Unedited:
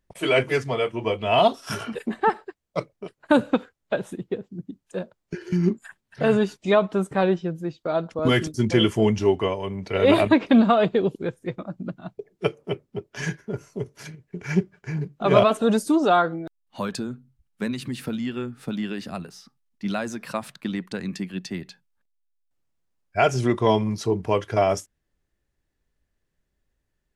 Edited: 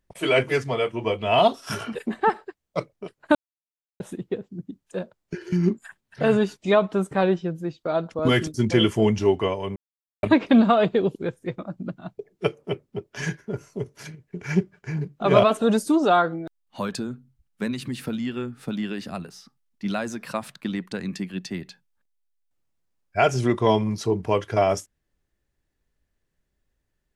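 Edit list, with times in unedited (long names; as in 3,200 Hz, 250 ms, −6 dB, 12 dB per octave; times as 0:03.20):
0:03.35–0:04.00: silence
0:09.76–0:10.23: silence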